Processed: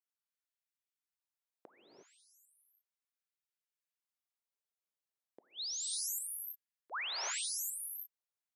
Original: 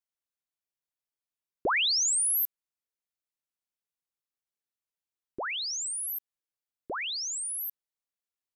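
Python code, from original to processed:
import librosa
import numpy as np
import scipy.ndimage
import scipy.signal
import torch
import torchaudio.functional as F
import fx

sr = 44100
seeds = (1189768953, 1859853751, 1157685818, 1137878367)

y = fx.gate_flip(x, sr, shuts_db=-30.0, range_db=-38)
y = fx.rev_gated(y, sr, seeds[0], gate_ms=380, shape='rising', drr_db=2.0)
y = fx.filter_lfo_highpass(y, sr, shape='sine', hz=0.35, low_hz=380.0, high_hz=1700.0, q=1.2)
y = y * librosa.db_to_amplitude(-6.5)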